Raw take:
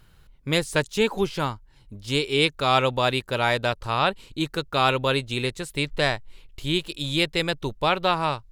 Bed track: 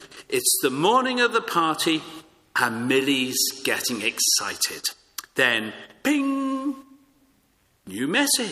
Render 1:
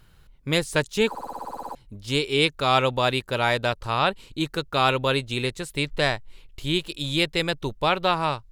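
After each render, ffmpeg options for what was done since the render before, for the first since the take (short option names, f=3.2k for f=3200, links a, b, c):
-filter_complex "[0:a]asplit=12[a][b][c][d][e][f][g][h][i][j][k][l];[a]atrim=end=1.152[m];[b]atrim=start=1.088:end=1.152[n];[c]atrim=start=1.088:end=1.152[o];[d]atrim=start=1.088:end=1.152[p];[e]atrim=start=1.088:end=1.152[q];[f]atrim=start=1.088:end=1.152[r];[g]atrim=start=1.088:end=1.152[s];[h]atrim=start=1.088:end=1.152[t];[i]atrim=start=1.088:end=1.152[u];[j]atrim=start=1.088:end=1.152[v];[k]atrim=start=1.088:end=1.152[w];[l]atrim=start=1.748[x];[m][n]acrossfade=d=0.004:c1=hsin:c2=hsin[y];[y][o]acrossfade=d=0.004:c1=hsin:c2=hsin[z];[z][p]acrossfade=d=0.004:c1=hsin:c2=hsin[aa];[aa][q]acrossfade=d=0.004:c1=hsin:c2=hsin[ab];[ab][r]acrossfade=d=0.004:c1=hsin:c2=hsin[ac];[ac][s]acrossfade=d=0.004:c1=hsin:c2=hsin[ad];[ad][t]acrossfade=d=0.004:c1=hsin:c2=hsin[ae];[ae][u]acrossfade=d=0.004:c1=hsin:c2=hsin[af];[af][v]acrossfade=d=0.004:c1=hsin:c2=hsin[ag];[ag][w]acrossfade=d=0.004:c1=hsin:c2=hsin[ah];[ah][x]acrossfade=d=0.004:c1=hsin:c2=hsin"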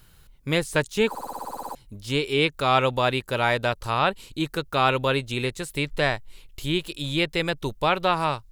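-filter_complex "[0:a]acrossover=split=3100[a][b];[b]acompressor=threshold=-42dB:ratio=4:attack=1:release=60[c];[a][c]amix=inputs=2:normalize=0,highshelf=f=5.5k:g=11"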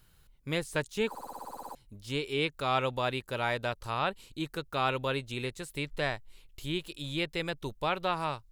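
-af "volume=-8.5dB"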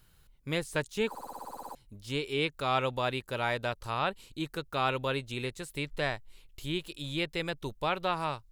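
-af anull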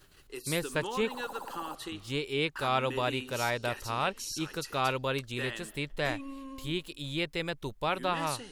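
-filter_complex "[1:a]volume=-18.5dB[a];[0:a][a]amix=inputs=2:normalize=0"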